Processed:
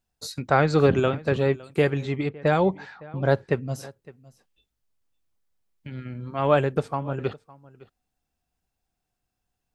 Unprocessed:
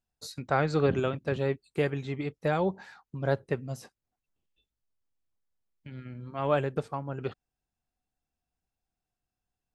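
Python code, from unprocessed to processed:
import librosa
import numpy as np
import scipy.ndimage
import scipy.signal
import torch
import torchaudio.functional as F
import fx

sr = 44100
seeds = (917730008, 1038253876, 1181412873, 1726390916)

y = x + 10.0 ** (-21.5 / 20.0) * np.pad(x, (int(560 * sr / 1000.0), 0))[:len(x)]
y = fx.env_lowpass(y, sr, base_hz=2000.0, full_db=-23.5, at=(2.29, 3.72))
y = y * 10.0 ** (6.5 / 20.0)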